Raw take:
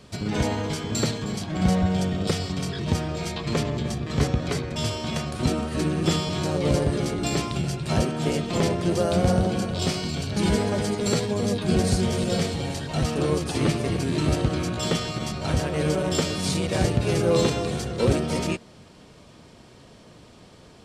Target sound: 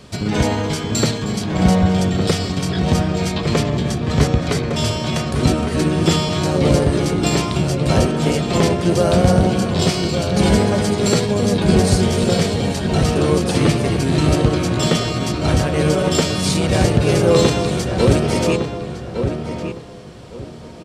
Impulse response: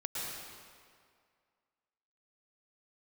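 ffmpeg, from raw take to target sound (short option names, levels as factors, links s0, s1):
-filter_complex "[0:a]asplit=2[s0][s1];[s1]adelay=1159,lowpass=f=1900:p=1,volume=0.473,asplit=2[s2][s3];[s3]adelay=1159,lowpass=f=1900:p=1,volume=0.25,asplit=2[s4][s5];[s5]adelay=1159,lowpass=f=1900:p=1,volume=0.25[s6];[s0][s2][s4][s6]amix=inputs=4:normalize=0,volume=2.24"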